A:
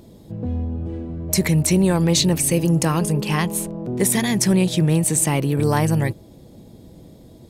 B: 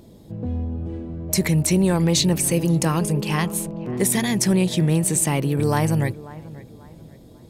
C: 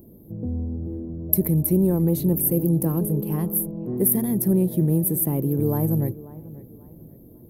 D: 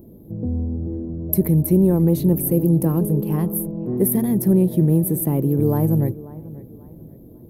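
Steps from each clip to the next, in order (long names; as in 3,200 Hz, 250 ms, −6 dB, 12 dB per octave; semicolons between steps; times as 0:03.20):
delay with a low-pass on its return 540 ms, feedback 33%, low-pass 2,200 Hz, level −18 dB; level −1.5 dB
drawn EQ curve 140 Hz 0 dB, 350 Hz +3 dB, 2,500 Hz −23 dB, 7,500 Hz −23 dB, 12,000 Hz +13 dB; level −2 dB
high-shelf EQ 7,800 Hz −8.5 dB; level +4 dB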